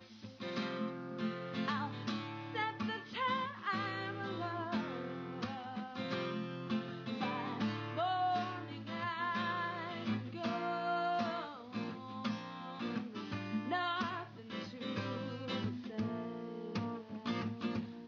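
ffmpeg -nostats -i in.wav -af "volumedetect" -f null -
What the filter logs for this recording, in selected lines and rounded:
mean_volume: -39.2 dB
max_volume: -22.4 dB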